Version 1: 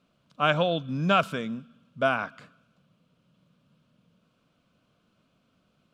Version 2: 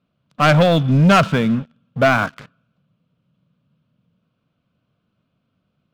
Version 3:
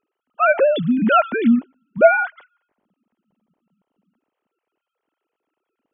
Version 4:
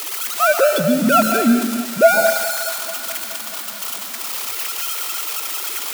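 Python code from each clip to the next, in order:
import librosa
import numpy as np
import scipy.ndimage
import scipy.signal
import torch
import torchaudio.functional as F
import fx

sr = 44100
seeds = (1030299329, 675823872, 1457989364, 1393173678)

y1 = scipy.signal.sosfilt(scipy.signal.butter(2, 4300.0, 'lowpass', fs=sr, output='sos'), x)
y1 = fx.peak_eq(y1, sr, hz=110.0, db=8.5, octaves=1.5)
y1 = fx.leveller(y1, sr, passes=3)
y1 = y1 * 10.0 ** (1.5 / 20.0)
y2 = fx.sine_speech(y1, sr)
y2 = y2 * 10.0 ** (-1.5 / 20.0)
y3 = y2 + 0.5 * 10.0 ** (-12.5 / 20.0) * np.diff(np.sign(y2), prepend=np.sign(y2[:1]))
y3 = fx.echo_thinned(y3, sr, ms=212, feedback_pct=81, hz=380.0, wet_db=-15.5)
y3 = fx.rev_plate(y3, sr, seeds[0], rt60_s=1.0, hf_ratio=0.8, predelay_ms=115, drr_db=5.5)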